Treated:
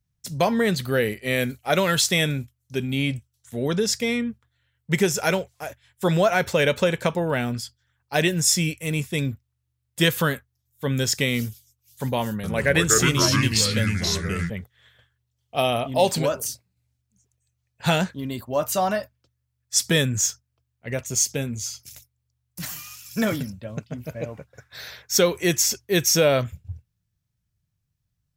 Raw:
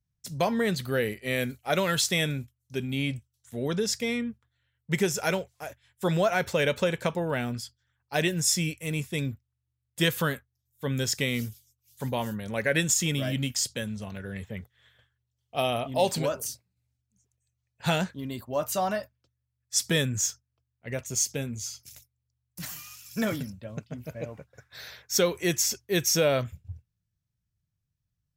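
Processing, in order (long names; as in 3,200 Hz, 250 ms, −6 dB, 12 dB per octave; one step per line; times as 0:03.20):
0:12.29–0:14.50: delay with pitch and tempo change per echo 148 ms, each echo −4 semitones, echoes 2
level +5 dB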